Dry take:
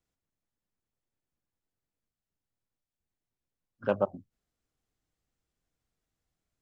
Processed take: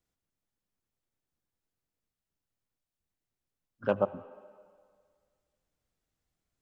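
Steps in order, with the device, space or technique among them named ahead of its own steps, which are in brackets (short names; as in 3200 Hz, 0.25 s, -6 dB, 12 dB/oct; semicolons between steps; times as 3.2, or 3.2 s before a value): filtered reverb send (on a send: HPF 260 Hz 12 dB/oct + LPF 3400 Hz + reverb RT60 2.0 s, pre-delay 68 ms, DRR 16.5 dB)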